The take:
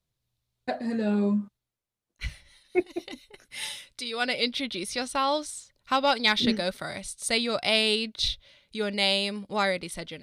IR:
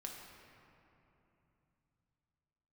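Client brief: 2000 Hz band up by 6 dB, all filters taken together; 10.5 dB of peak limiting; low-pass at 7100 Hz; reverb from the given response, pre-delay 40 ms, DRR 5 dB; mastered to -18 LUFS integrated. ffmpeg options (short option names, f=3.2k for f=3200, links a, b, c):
-filter_complex "[0:a]lowpass=7.1k,equalizer=f=2k:t=o:g=7.5,alimiter=limit=-15dB:level=0:latency=1,asplit=2[a][b];[1:a]atrim=start_sample=2205,adelay=40[c];[b][c]afir=irnorm=-1:irlink=0,volume=-2.5dB[d];[a][d]amix=inputs=2:normalize=0,volume=9dB"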